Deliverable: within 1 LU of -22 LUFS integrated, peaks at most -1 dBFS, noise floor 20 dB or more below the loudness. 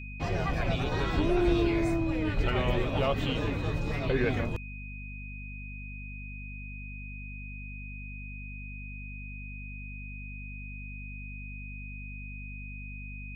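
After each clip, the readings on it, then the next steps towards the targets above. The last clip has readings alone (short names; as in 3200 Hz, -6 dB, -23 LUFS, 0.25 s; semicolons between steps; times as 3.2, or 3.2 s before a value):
hum 50 Hz; harmonics up to 250 Hz; hum level -39 dBFS; steady tone 2500 Hz; tone level -44 dBFS; loudness -33.5 LUFS; peak -12.5 dBFS; loudness target -22.0 LUFS
-> notches 50/100/150/200/250 Hz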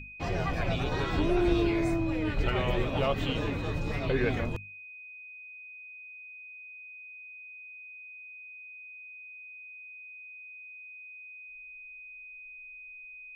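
hum none; steady tone 2500 Hz; tone level -44 dBFS
-> notch 2500 Hz, Q 30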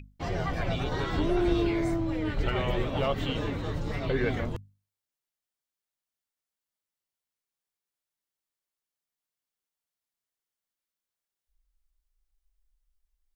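steady tone none; loudness -30.0 LUFS; peak -12.0 dBFS; loudness target -22.0 LUFS
-> gain +8 dB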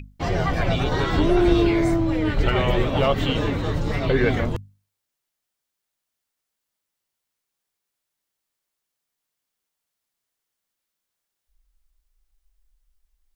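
loudness -22.0 LUFS; peak -4.0 dBFS; noise floor -82 dBFS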